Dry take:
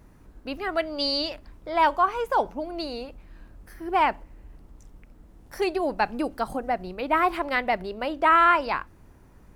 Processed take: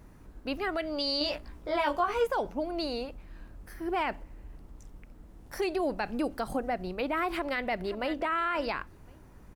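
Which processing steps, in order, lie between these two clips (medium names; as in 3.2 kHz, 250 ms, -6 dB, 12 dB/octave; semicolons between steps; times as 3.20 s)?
dynamic bell 940 Hz, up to -6 dB, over -33 dBFS, Q 1.6; 7.30–8.22 s: echo throw 530 ms, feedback 15%, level -16 dB; peak limiter -21.5 dBFS, peak gain reduction 11 dB; 1.19–2.27 s: doubling 17 ms -2 dB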